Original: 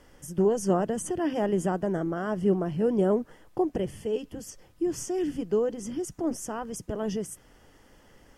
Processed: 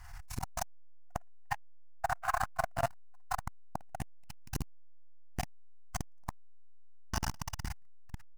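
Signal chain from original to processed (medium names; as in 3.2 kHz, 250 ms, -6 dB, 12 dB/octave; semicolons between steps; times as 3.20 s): dead-time distortion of 0.074 ms; bouncing-ball echo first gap 140 ms, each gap 0.75×, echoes 5; level rider gain up to 10 dB; bass shelf 110 Hz +8.5 dB; FFT band-reject 130–670 Hz; peaking EQ 3.2 kHz -13.5 dB 0.22 oct; Schroeder reverb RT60 0.6 s, combs from 30 ms, DRR -4.5 dB; compression 6:1, threshold -24 dBFS, peak gain reduction 12.5 dB; transformer saturation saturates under 460 Hz; trim +3 dB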